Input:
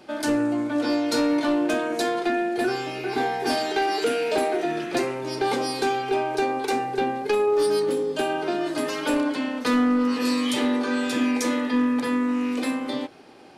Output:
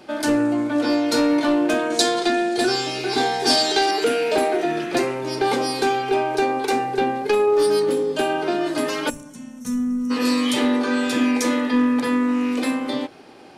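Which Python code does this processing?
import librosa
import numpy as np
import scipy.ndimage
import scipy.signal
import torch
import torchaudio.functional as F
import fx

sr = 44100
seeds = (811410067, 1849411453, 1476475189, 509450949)

y = fx.band_shelf(x, sr, hz=5600.0, db=10.0, octaves=1.7, at=(1.9, 3.91))
y = fx.spec_box(y, sr, start_s=9.1, length_s=1.01, low_hz=240.0, high_hz=5400.0, gain_db=-22)
y = y * 10.0 ** (3.5 / 20.0)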